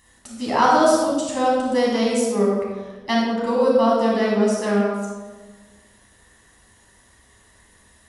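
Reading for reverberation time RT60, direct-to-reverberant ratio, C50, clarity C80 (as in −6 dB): 1.3 s, −5.0 dB, −0.5 dB, 2.0 dB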